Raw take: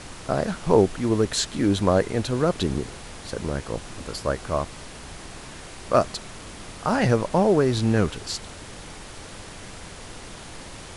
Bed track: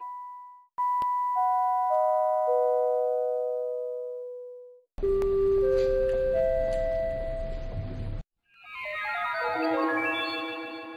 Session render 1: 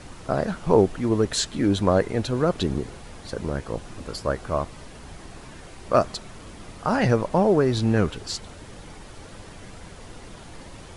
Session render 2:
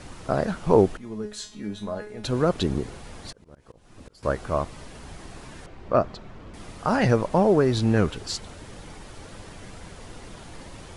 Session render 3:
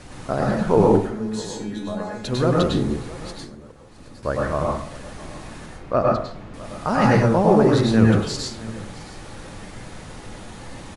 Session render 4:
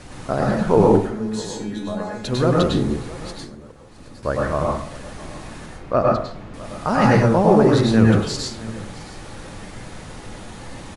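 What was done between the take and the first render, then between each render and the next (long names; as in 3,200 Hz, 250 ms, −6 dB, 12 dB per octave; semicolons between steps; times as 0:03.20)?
broadband denoise 7 dB, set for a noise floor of −41 dBFS
0:00.97–0:02.24: tuned comb filter 210 Hz, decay 0.34 s, mix 90%; 0:03.29–0:04.23: volume swells 749 ms; 0:05.66–0:06.54: head-to-tape spacing loss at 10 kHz 25 dB
single-tap delay 664 ms −19 dB; dense smooth reverb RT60 0.5 s, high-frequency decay 0.6×, pre-delay 90 ms, DRR −2.5 dB
level +1.5 dB; brickwall limiter −3 dBFS, peak gain reduction 1.5 dB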